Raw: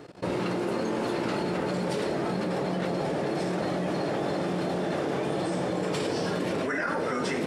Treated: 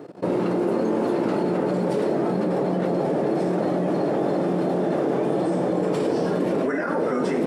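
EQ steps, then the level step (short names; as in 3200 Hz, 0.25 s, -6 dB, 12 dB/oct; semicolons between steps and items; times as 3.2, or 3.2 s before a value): HPF 190 Hz 12 dB/oct; tilt shelf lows +9 dB, about 1400 Hz; high shelf 8800 Hz +11.5 dB; 0.0 dB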